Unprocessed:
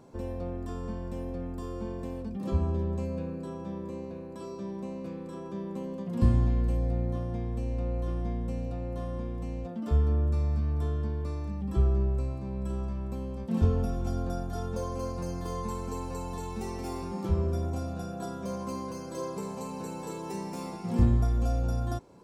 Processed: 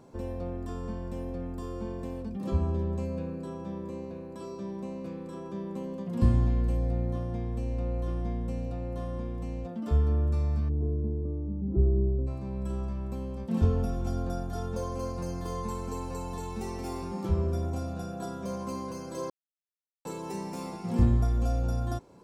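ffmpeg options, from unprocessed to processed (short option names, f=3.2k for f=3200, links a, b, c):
-filter_complex "[0:a]asplit=3[a][b][c];[a]afade=t=out:st=10.68:d=0.02[d];[b]lowpass=f=370:t=q:w=1.7,afade=t=in:st=10.68:d=0.02,afade=t=out:st=12.26:d=0.02[e];[c]afade=t=in:st=12.26:d=0.02[f];[d][e][f]amix=inputs=3:normalize=0,asplit=3[g][h][i];[g]atrim=end=19.3,asetpts=PTS-STARTPTS,afade=t=out:st=19.296:d=0.004:c=hsin[j];[h]atrim=start=19.3:end=20.05,asetpts=PTS-STARTPTS,volume=0[k];[i]atrim=start=20.05,asetpts=PTS-STARTPTS,afade=t=in:d=0.004:c=hsin[l];[j][k][l]concat=n=3:v=0:a=1"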